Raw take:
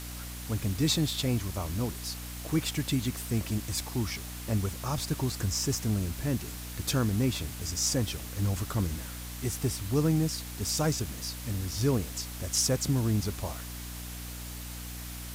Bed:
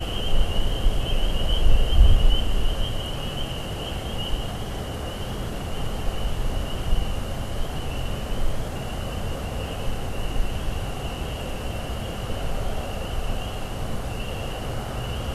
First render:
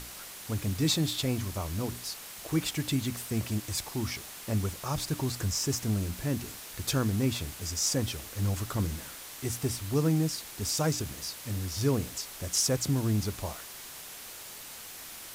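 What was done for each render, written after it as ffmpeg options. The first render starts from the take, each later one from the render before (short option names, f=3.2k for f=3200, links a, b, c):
-af "bandreject=f=60:t=h:w=6,bandreject=f=120:t=h:w=6,bandreject=f=180:t=h:w=6,bandreject=f=240:t=h:w=6,bandreject=f=300:t=h:w=6"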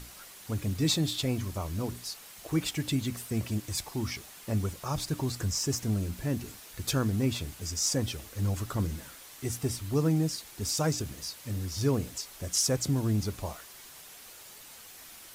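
-af "afftdn=nr=6:nf=-45"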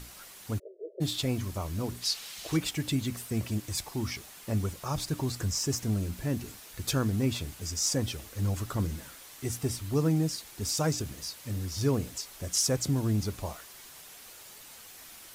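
-filter_complex "[0:a]asplit=3[a][b][c];[a]afade=t=out:st=0.58:d=0.02[d];[b]asuperpass=centerf=480:order=20:qfactor=1.6,afade=t=in:st=0.58:d=0.02,afade=t=out:st=1:d=0.02[e];[c]afade=t=in:st=1:d=0.02[f];[d][e][f]amix=inputs=3:normalize=0,asplit=3[g][h][i];[g]afade=t=out:st=2.01:d=0.02[j];[h]equalizer=f=3.9k:t=o:w=2:g=11,afade=t=in:st=2.01:d=0.02,afade=t=out:st=2.56:d=0.02[k];[i]afade=t=in:st=2.56:d=0.02[l];[j][k][l]amix=inputs=3:normalize=0"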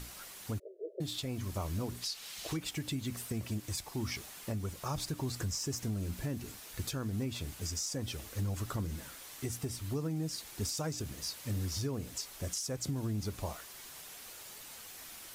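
-af "acompressor=threshold=-30dB:ratio=3,alimiter=level_in=2.5dB:limit=-24dB:level=0:latency=1:release=489,volume=-2.5dB"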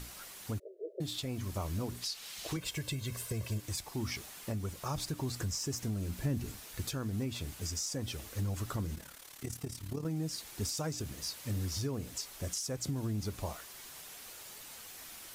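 -filter_complex "[0:a]asettb=1/sr,asplit=3[a][b][c];[a]atrim=end=2.564[d];[b]atrim=start=2.56:end=3.61,asetpts=PTS-STARTPTS,afade=t=in:d=0.004:c=qsin,afade=t=out:st=1.046:d=0.004:c=qsin,aecho=1:1:1.9:0.65,atrim=end_sample=46305[e];[c]atrim=start=3.606[f];[d][e]acrossfade=d=0.004:c1=hsin:c2=qsin[g];[g][f]acrossfade=d=0.004:c1=qsin:c2=hsin,asettb=1/sr,asplit=3[h][i][j];[h]atrim=end=6.254[k];[i]atrim=start=6.25:end=6.66,asetpts=PTS-STARTPTS,afade=t=in:d=0.004:c=qsin,afade=t=out:st=0.406:d=0.004:c=qsin,lowshelf=f=190:g=8.5[l];[j]atrim=start=6.656[m];[k][l]acrossfade=d=0.004:c1=hsin:c2=qsin[n];[n][m]acrossfade=d=0.004:c1=qsin:c2=hsin,asettb=1/sr,asplit=3[o][p][q];[o]atrim=end=8.954[r];[p]atrim=start=8.95:end=10.05,asetpts=PTS-STARTPTS,afade=t=in:d=0.004:c=qsin,afade=t=out:st=1.096:d=0.004:c=qsin,tremolo=f=36:d=0.75[s];[q]atrim=start=10.046[t];[r][s]acrossfade=d=0.004:c1=hsin:c2=qsin[u];[u][t]acrossfade=d=0.004:c1=qsin:c2=hsin"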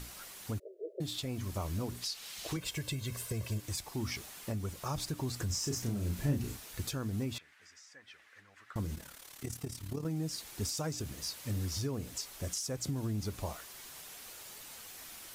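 -filter_complex "[0:a]asettb=1/sr,asplit=3[a][b][c];[a]atrim=end=5.464[d];[b]atrim=start=5.46:end=6.57,asetpts=PTS-STARTPTS,afade=t=in:d=0.004:c=qsin,afade=t=out:st=1.106:d=0.004:c=qsin,asplit=2[e][f];[f]adelay=34,volume=-4dB[g];[e][g]amix=inputs=2:normalize=0,atrim=end_sample=48951[h];[c]atrim=start=6.566[i];[d][h]acrossfade=d=0.004:c1=hsin:c2=qsin[j];[j][i]acrossfade=d=0.004:c1=qsin:c2=hsin,asettb=1/sr,asplit=3[k][l][m];[k]atrim=end=7.384[n];[l]atrim=start=7.38:end=8.76,asetpts=PTS-STARTPTS,afade=t=in:d=0.004:c=qsin,afade=t=out:st=1.376:d=0.004:c=qsin,bandpass=f=1.8k:t=q:w=3.3[o];[m]atrim=start=8.756[p];[n][o]acrossfade=d=0.004:c1=hsin:c2=qsin[q];[q][p]acrossfade=d=0.004:c1=qsin:c2=hsin"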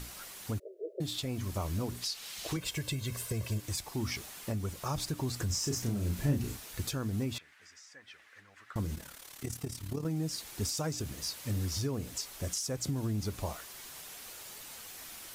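-af "volume=2dB"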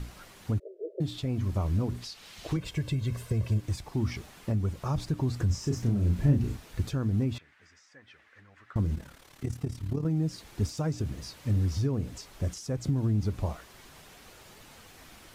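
-af "lowpass=f=2.6k:p=1,lowshelf=f=300:g=8.5"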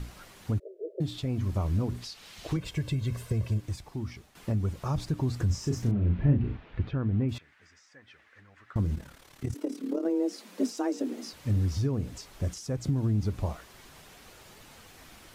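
-filter_complex "[0:a]asettb=1/sr,asplit=3[a][b][c];[a]atrim=end=5.914[d];[b]atrim=start=5.91:end=7.29,asetpts=PTS-STARTPTS,afade=t=in:d=0.004:c=qsin,afade=t=out:st=1.376:d=0.004:c=qsin,lowpass=f=3k:w=0.5412,lowpass=f=3k:w=1.3066[e];[c]atrim=start=7.286[f];[d][e]acrossfade=d=0.004:c1=hsin:c2=qsin[g];[g][f]acrossfade=d=0.004:c1=qsin:c2=hsin,asettb=1/sr,asplit=3[h][i][j];[h]atrim=end=9.544[k];[i]atrim=start=9.54:end=11.33,asetpts=PTS-STARTPTS,afade=t=in:d=0.004:c=qsin,afade=t=out:st=1.786:d=0.004:c=qsin,afreqshift=170[l];[j]atrim=start=11.326[m];[k][l]acrossfade=d=0.004:c1=hsin:c2=qsin[n];[n][m]acrossfade=d=0.004:c1=qsin:c2=hsin,asplit=2[o][p];[o]atrim=end=4.35,asetpts=PTS-STARTPTS,afade=t=out:st=3.31:d=1.04:silence=0.251189[q];[p]atrim=start=4.35,asetpts=PTS-STARTPTS,afade=t=in:d=0.004:c=hsin:silence=0.251189[r];[q][r]concat=n=2:v=0:a=1"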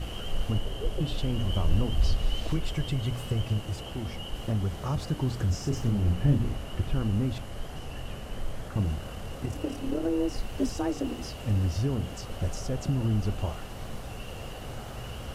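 -filter_complex "[1:a]volume=-9.5dB[a];[0:a][a]amix=inputs=2:normalize=0"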